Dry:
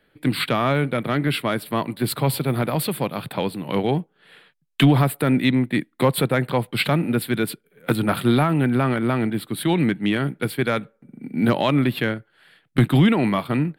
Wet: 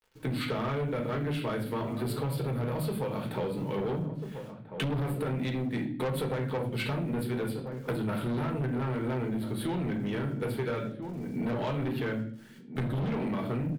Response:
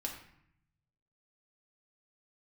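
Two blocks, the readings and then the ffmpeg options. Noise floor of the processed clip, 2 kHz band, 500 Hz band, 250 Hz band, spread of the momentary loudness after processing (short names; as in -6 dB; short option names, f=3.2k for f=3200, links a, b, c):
-46 dBFS, -13.0 dB, -8.5 dB, -11.5 dB, 5 LU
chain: -filter_complex "[0:a]tiltshelf=f=1.3k:g=3.5,acrusher=bits=8:mix=0:aa=0.000001[a];[1:a]atrim=start_sample=2205,asetrate=79380,aresample=44100[b];[a][b]afir=irnorm=-1:irlink=0,asoftclip=type=tanh:threshold=-21.5dB,asplit=2[c][d];[d]adelay=1341,volume=-12dB,highshelf=f=4k:g=-30.2[e];[c][e]amix=inputs=2:normalize=0,acompressor=threshold=-29dB:ratio=6"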